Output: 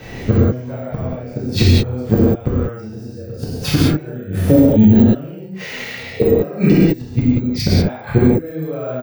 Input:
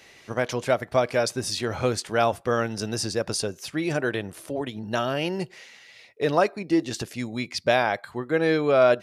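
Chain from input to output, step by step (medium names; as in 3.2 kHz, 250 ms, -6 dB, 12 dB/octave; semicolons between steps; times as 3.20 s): band-passed feedback delay 66 ms, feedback 75%, band-pass 2.2 kHz, level -16 dB; rotary cabinet horn 1 Hz; careless resampling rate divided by 2×, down none, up zero stuff; tilt EQ -4 dB/octave; doubling 32 ms -3 dB; inverted gate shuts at -16 dBFS, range -33 dB; reverberation, pre-delay 3 ms, DRR -7 dB; loudness maximiser +17 dB; trim -1 dB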